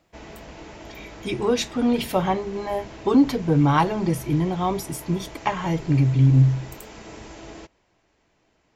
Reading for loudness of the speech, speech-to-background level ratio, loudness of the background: -22.0 LUFS, 19.5 dB, -41.5 LUFS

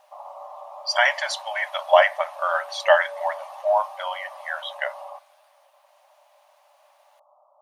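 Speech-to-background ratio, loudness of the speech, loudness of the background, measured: 17.0 dB, -23.0 LUFS, -40.0 LUFS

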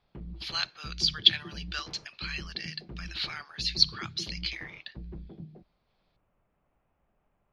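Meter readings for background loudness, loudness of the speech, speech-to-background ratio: -45.5 LUFS, -29.0 LUFS, 16.5 dB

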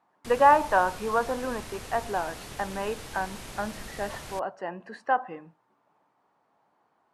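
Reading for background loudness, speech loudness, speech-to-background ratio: -41.5 LUFS, -28.0 LUFS, 13.5 dB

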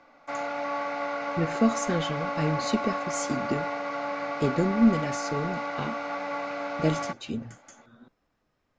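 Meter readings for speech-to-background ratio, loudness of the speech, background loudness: 3.0 dB, -29.0 LUFS, -32.0 LUFS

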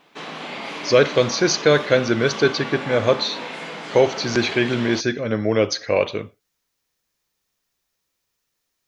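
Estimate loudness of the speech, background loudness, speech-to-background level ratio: -20.0 LUFS, -31.5 LUFS, 11.5 dB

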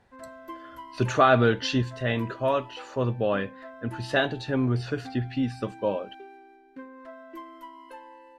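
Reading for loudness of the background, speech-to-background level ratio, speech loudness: -45.0 LUFS, 18.5 dB, -26.5 LUFS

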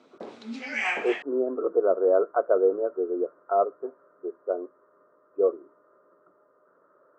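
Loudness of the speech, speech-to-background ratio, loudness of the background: -26.0 LUFS, 4.5 dB, -30.5 LUFS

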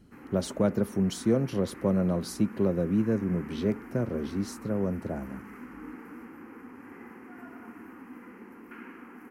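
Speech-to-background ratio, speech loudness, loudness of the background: 16.5 dB, -29.0 LUFS, -45.5 LUFS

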